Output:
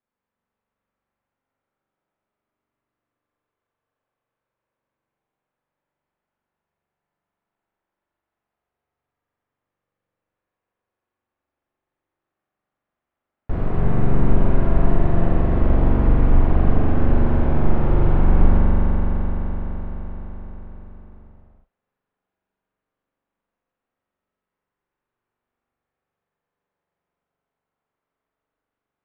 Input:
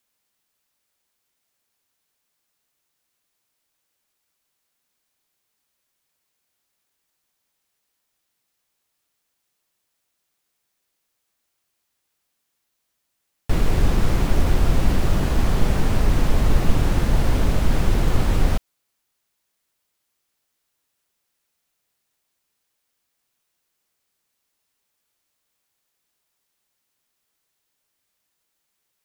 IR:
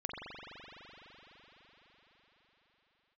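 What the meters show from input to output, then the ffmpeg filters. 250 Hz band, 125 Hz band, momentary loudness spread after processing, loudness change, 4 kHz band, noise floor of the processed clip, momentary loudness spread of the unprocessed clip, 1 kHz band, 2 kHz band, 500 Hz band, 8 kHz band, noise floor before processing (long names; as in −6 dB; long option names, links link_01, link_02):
+3.5 dB, +2.5 dB, 14 LU, +1.5 dB, below −15 dB, below −85 dBFS, 2 LU, +1.5 dB, −4.5 dB, +3.0 dB, below −30 dB, −76 dBFS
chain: -filter_complex "[0:a]lowpass=1300[link_01];[1:a]atrim=start_sample=2205[link_02];[link_01][link_02]afir=irnorm=-1:irlink=0,volume=-1dB"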